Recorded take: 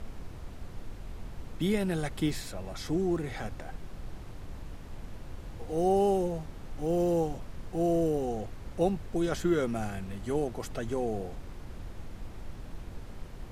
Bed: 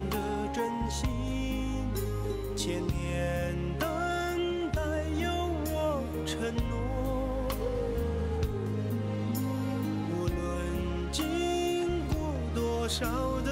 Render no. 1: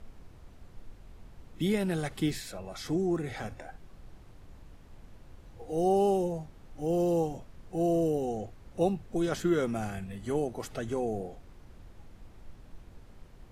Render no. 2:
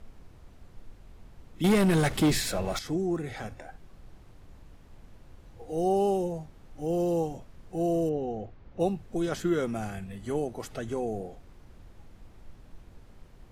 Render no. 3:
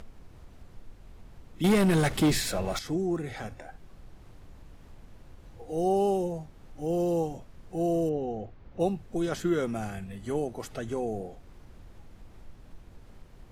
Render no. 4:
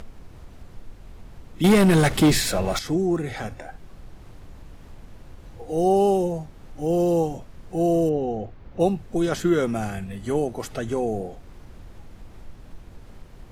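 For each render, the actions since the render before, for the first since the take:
noise print and reduce 9 dB
1.64–2.79 s: waveshaping leveller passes 3; 8.09–8.80 s: distance through air 200 m
upward compressor, threshold -43 dBFS
trim +6.5 dB

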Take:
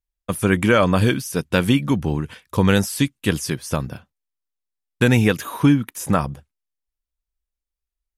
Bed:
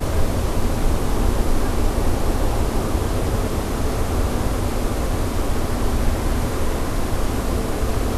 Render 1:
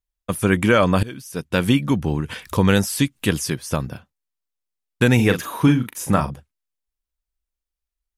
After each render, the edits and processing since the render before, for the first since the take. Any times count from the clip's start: 1.03–1.69 s: fade in, from -22.5 dB; 2.20–3.48 s: upward compressor, threshold -20 dBFS; 5.15–6.31 s: doubling 40 ms -8 dB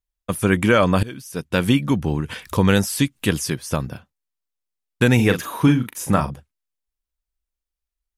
no audible change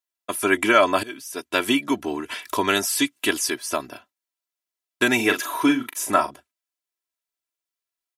Bessel high-pass 440 Hz, order 2; comb 3 ms, depth 86%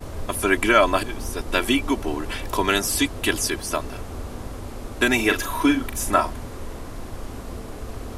add bed -12.5 dB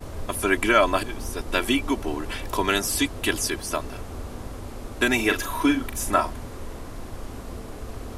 trim -2 dB

